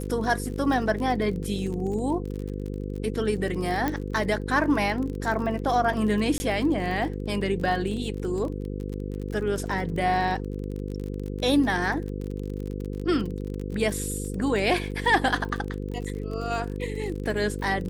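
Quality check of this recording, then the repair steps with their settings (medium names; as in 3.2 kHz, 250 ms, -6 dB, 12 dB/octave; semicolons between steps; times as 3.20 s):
buzz 50 Hz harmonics 10 -32 dBFS
crackle 37 per s -32 dBFS
3.88 s: pop -13 dBFS
6.38–6.40 s: dropout 20 ms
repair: de-click; de-hum 50 Hz, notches 10; interpolate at 6.38 s, 20 ms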